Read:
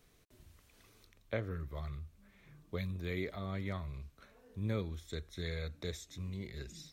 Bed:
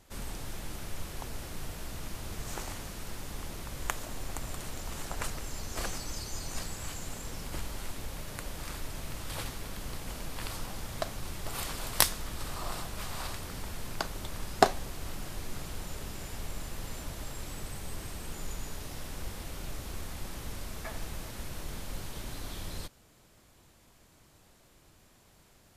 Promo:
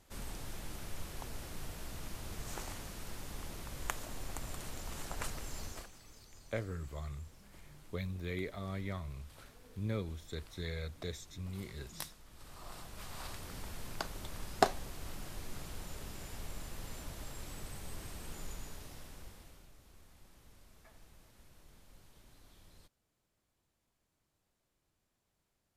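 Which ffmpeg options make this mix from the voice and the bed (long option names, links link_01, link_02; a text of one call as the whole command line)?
ffmpeg -i stem1.wav -i stem2.wav -filter_complex "[0:a]adelay=5200,volume=-1dB[link_01];[1:a]volume=10dB,afade=type=out:start_time=5.65:duration=0.21:silence=0.16788,afade=type=in:start_time=12.27:duration=1.27:silence=0.188365,afade=type=out:start_time=18.39:duration=1.31:silence=0.16788[link_02];[link_01][link_02]amix=inputs=2:normalize=0" out.wav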